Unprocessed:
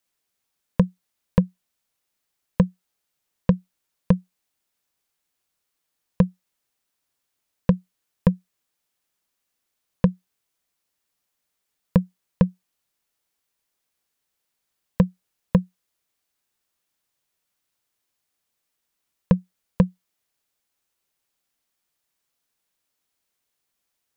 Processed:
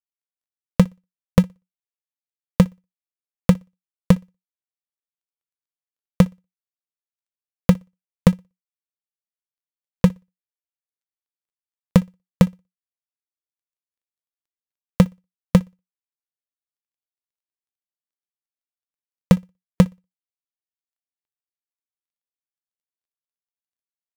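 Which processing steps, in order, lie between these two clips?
dead-time distortion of 0.25 ms; flutter echo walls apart 10.3 m, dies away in 0.25 s; reverb removal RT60 0.79 s; trim +4 dB

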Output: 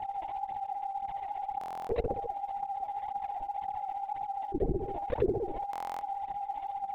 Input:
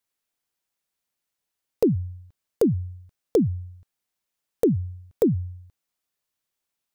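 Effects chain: whistle 800 Hz -49 dBFS; granulator 70 ms, grains 15 per s, spray 158 ms, pitch spread up and down by 0 st; steep high-pass 360 Hz 48 dB/octave; feedback echo behind a low-pass 65 ms, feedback 33%, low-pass 860 Hz, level -7 dB; LPC vocoder at 8 kHz whisper; peaking EQ 2 kHz +10.5 dB 0.84 oct; phaser 1.9 Hz, delay 3.5 ms, feedback 60%; buffer glitch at 1.59/5.71 s, samples 1024, times 12; level flattener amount 70%; trim -7.5 dB

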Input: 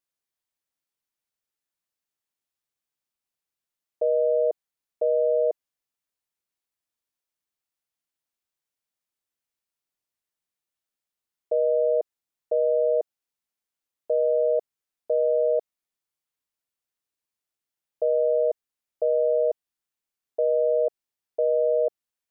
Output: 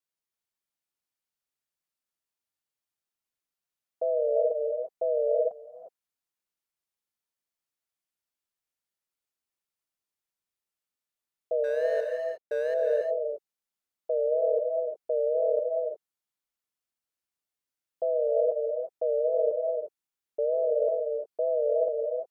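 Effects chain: 11.64–12.74 s: median filter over 41 samples; wow and flutter 100 cents; gated-style reverb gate 380 ms rising, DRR 2.5 dB; 5.49–5.86 s: time-frequency box 320–680 Hz -17 dB; trim -4.5 dB

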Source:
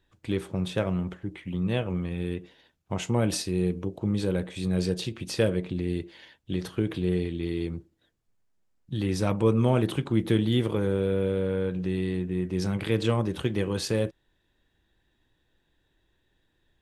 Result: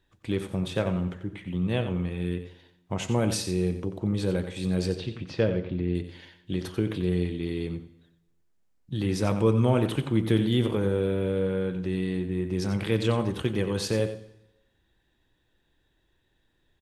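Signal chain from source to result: 4.92–5.95 s: distance through air 230 m; on a send: delay 90 ms -10.5 dB; on the sum: plate-style reverb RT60 0.93 s, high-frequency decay 0.9×, pre-delay 95 ms, DRR 18.5 dB

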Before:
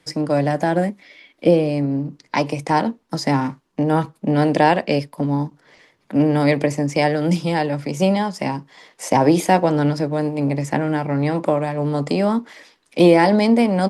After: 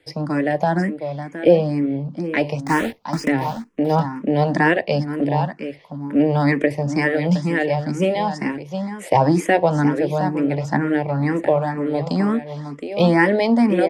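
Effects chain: 2.65–3.30 s: block-companded coder 3-bit; treble shelf 5 kHz -9.5 dB; delay 716 ms -9.5 dB; dynamic bell 1.8 kHz, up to +6 dB, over -44 dBFS, Q 5.4; barber-pole phaser +2.1 Hz; trim +2.5 dB

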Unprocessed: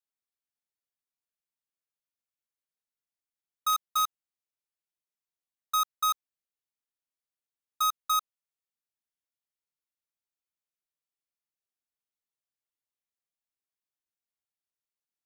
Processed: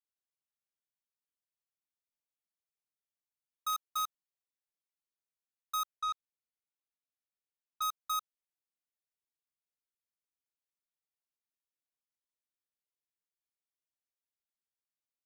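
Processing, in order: 5.96–7.82 s: low-pass 4.2 kHz 12 dB/octave; trim -7.5 dB

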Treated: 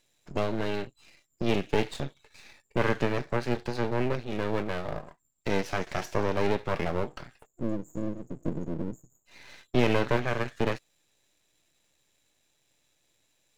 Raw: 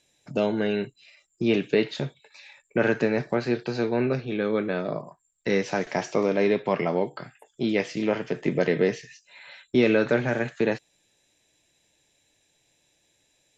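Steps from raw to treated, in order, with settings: spectral selection erased 7.46–9.26 s, 350–6600 Hz; half-wave rectifier

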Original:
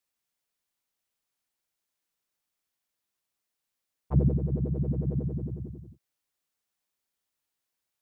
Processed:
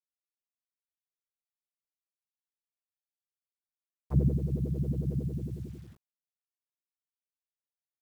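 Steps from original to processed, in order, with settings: word length cut 10-bit, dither none; dynamic bell 870 Hz, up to -7 dB, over -50 dBFS, Q 1.1; trim -2 dB

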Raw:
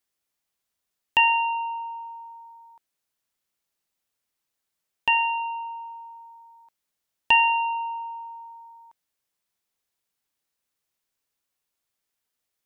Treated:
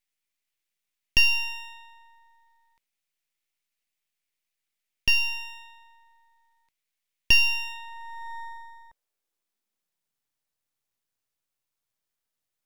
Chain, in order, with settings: high-pass sweep 2.2 kHz -> 100 Hz, 7.63–10.36 s; half-wave rectifier

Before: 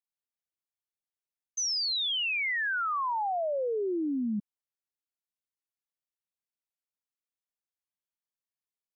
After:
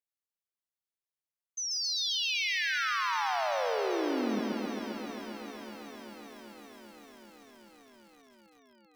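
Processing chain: echo whose repeats swap between lows and highs 194 ms, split 2.1 kHz, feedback 90%, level -12 dB; bit-crushed delay 134 ms, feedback 80%, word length 9-bit, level -3 dB; trim -4.5 dB

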